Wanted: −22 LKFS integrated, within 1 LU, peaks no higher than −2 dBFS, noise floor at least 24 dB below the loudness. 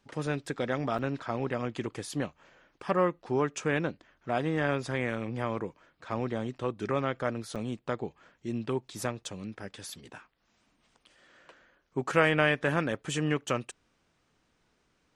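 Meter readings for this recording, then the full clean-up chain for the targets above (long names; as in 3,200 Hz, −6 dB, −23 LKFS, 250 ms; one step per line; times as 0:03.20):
number of dropouts 2; longest dropout 6.7 ms; integrated loudness −31.5 LKFS; sample peak −8.0 dBFS; target loudness −22.0 LKFS
→ repair the gap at 0:00.98/0:07.55, 6.7 ms
level +9.5 dB
brickwall limiter −2 dBFS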